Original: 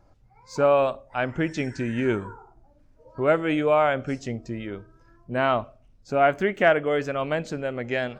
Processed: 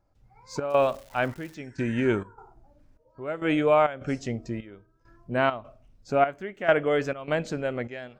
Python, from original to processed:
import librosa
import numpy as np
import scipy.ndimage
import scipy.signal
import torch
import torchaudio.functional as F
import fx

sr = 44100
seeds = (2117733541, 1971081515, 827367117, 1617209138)

y = fx.step_gate(x, sr, bpm=101, pattern='.xxx.xxxx..', floor_db=-12.0, edge_ms=4.5)
y = fx.dmg_crackle(y, sr, seeds[0], per_s=370.0, level_db=-39.0, at=(0.69, 1.55), fade=0.02)